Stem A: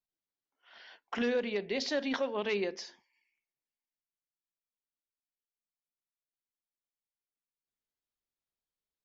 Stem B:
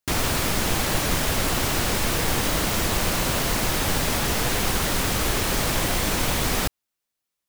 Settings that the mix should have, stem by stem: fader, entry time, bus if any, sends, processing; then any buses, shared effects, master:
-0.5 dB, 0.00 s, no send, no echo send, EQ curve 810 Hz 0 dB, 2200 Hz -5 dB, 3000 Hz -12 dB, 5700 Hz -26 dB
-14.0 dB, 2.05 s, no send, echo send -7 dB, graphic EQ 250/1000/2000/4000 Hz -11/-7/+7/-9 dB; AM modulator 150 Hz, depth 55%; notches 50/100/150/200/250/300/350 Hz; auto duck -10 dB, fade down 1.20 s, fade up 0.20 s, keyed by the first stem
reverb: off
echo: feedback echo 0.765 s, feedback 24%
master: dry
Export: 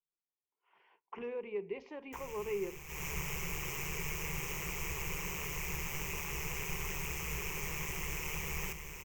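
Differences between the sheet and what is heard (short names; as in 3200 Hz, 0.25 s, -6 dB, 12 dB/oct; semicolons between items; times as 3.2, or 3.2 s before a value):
stem A -0.5 dB -> -9.5 dB; master: extra ripple EQ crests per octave 0.75, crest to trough 14 dB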